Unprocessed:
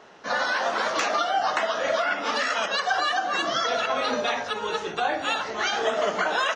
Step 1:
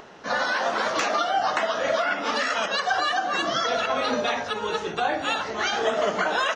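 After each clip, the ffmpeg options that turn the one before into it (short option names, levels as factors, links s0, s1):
-af "lowshelf=f=260:g=6,acompressor=mode=upward:threshold=0.00891:ratio=2.5"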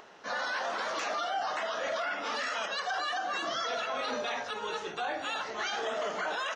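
-af "lowshelf=f=280:g=-11,alimiter=limit=0.106:level=0:latency=1:release=11,volume=0.531"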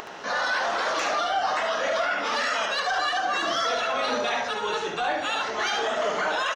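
-filter_complex "[0:a]acompressor=mode=upward:threshold=0.01:ratio=2.5,asoftclip=type=tanh:threshold=0.0631,asplit=2[s0][s1];[s1]aecho=0:1:72:0.473[s2];[s0][s2]amix=inputs=2:normalize=0,volume=2.37"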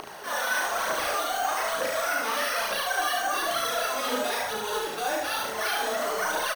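-af "acrusher=samples=6:mix=1:aa=0.000001,aphaser=in_gain=1:out_gain=1:delay=4.6:decay=0.58:speed=1.1:type=triangular,aecho=1:1:36|74:0.631|0.596,volume=0.501"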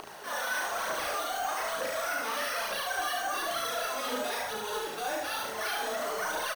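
-filter_complex "[0:a]asplit=2[s0][s1];[s1]acrusher=bits=6:mix=0:aa=0.000001,volume=0.562[s2];[s0][s2]amix=inputs=2:normalize=0,asoftclip=type=tanh:threshold=0.2,volume=0.398"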